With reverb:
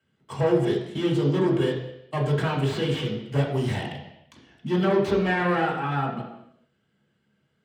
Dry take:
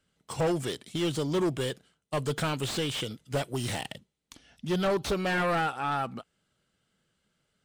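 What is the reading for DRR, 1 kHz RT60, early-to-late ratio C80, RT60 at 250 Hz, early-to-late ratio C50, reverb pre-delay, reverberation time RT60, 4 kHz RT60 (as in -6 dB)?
-4.5 dB, 0.85 s, 8.0 dB, 0.80 s, 5.5 dB, 3 ms, 0.80 s, 0.85 s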